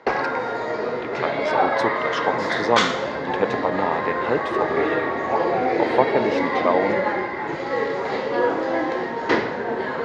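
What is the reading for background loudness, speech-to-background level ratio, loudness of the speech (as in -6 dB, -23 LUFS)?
-23.0 LUFS, -3.0 dB, -26.0 LUFS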